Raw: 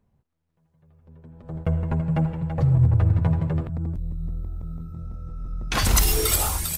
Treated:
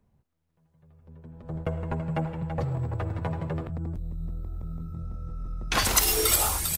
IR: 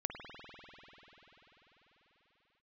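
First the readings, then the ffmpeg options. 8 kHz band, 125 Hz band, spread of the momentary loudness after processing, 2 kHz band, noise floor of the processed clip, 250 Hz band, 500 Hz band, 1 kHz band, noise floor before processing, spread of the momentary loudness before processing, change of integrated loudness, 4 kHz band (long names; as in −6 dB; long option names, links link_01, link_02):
0.0 dB, −9.5 dB, 17 LU, 0.0 dB, −72 dBFS, −6.5 dB, −0.5 dB, 0.0 dB, −71 dBFS, 17 LU, −5.0 dB, can't be measured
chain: -filter_complex "[0:a]acrossover=split=290[link_01][link_02];[link_01]acompressor=threshold=-30dB:ratio=6[link_03];[link_02]aecho=1:1:107:0.1[link_04];[link_03][link_04]amix=inputs=2:normalize=0"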